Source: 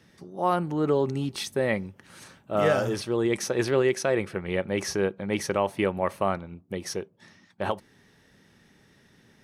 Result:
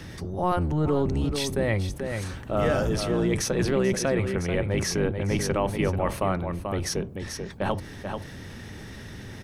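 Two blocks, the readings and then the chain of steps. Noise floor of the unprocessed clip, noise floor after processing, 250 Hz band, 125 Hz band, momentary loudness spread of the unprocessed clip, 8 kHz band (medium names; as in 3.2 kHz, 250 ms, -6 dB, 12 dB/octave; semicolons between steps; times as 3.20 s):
-60 dBFS, -41 dBFS, +2.5 dB, +7.0 dB, 11 LU, +4.0 dB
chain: octave divider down 1 oct, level +3 dB; delay 437 ms -12 dB; level flattener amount 50%; trim -3.5 dB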